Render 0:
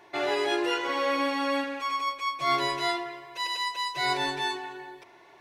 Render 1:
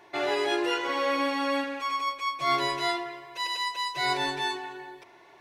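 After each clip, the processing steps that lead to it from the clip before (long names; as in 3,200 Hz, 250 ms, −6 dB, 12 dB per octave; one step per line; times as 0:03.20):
no processing that can be heard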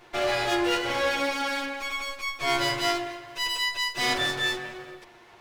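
lower of the sound and its delayed copy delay 8.5 ms
level +3.5 dB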